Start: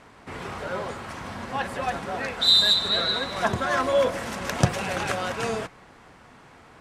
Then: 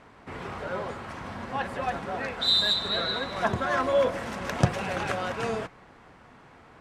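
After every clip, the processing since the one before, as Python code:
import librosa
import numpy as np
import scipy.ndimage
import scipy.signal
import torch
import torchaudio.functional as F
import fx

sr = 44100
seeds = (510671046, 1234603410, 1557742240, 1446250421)

y = fx.high_shelf(x, sr, hz=4500.0, db=-9.0)
y = y * 10.0 ** (-1.5 / 20.0)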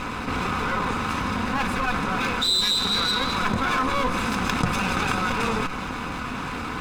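y = fx.lower_of_two(x, sr, delay_ms=0.8)
y = y + 0.34 * np.pad(y, (int(4.0 * sr / 1000.0), 0))[:len(y)]
y = fx.env_flatten(y, sr, amount_pct=70)
y = y * 10.0 ** (-2.0 / 20.0)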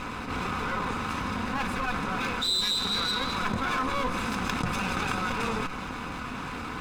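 y = fx.attack_slew(x, sr, db_per_s=130.0)
y = y * 10.0 ** (-5.0 / 20.0)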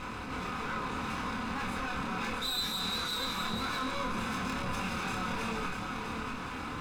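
y = 10.0 ** (-27.0 / 20.0) * np.tanh(x / 10.0 ** (-27.0 / 20.0))
y = fx.doubler(y, sr, ms=27.0, db=-3.0)
y = y + 10.0 ** (-5.5 / 20.0) * np.pad(y, (int(646 * sr / 1000.0), 0))[:len(y)]
y = y * 10.0 ** (-5.0 / 20.0)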